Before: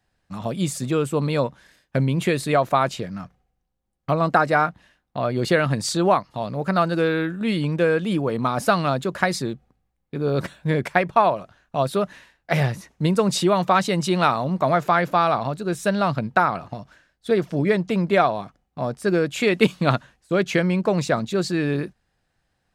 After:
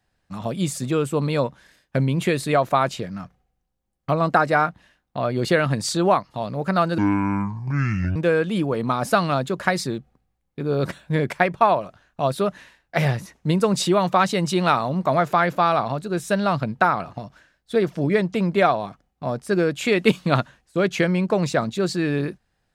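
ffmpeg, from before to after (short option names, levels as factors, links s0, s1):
-filter_complex "[0:a]asplit=3[s0][s1][s2];[s0]atrim=end=6.984[s3];[s1]atrim=start=6.98:end=7.71,asetpts=PTS-STARTPTS,asetrate=27342,aresample=44100,atrim=end_sample=51924,asetpts=PTS-STARTPTS[s4];[s2]atrim=start=7.706[s5];[s3][s4]acrossfade=d=0.004:c1=hsin:c2=hsin[s6];[s6][s5]acrossfade=d=0.004:c1=hsin:c2=hsin"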